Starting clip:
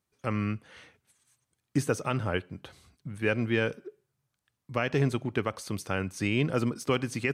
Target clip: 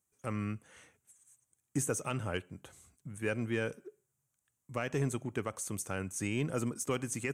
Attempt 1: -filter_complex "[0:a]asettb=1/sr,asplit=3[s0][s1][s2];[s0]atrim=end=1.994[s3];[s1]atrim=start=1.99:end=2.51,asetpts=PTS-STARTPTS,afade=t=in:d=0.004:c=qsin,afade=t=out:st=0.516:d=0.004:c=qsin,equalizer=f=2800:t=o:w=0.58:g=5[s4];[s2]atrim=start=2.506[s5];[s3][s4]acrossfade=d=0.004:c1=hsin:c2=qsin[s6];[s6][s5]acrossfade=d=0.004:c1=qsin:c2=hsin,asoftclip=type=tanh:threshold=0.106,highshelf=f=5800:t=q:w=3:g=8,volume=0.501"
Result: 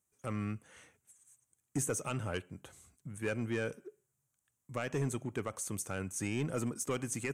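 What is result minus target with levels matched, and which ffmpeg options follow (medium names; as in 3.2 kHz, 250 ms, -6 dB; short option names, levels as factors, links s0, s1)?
saturation: distortion +11 dB
-filter_complex "[0:a]asettb=1/sr,asplit=3[s0][s1][s2];[s0]atrim=end=1.994[s3];[s1]atrim=start=1.99:end=2.51,asetpts=PTS-STARTPTS,afade=t=in:d=0.004:c=qsin,afade=t=out:st=0.516:d=0.004:c=qsin,equalizer=f=2800:t=o:w=0.58:g=5[s4];[s2]atrim=start=2.506[s5];[s3][s4]acrossfade=d=0.004:c1=hsin:c2=qsin[s6];[s6][s5]acrossfade=d=0.004:c1=qsin:c2=hsin,asoftclip=type=tanh:threshold=0.251,highshelf=f=5800:t=q:w=3:g=8,volume=0.501"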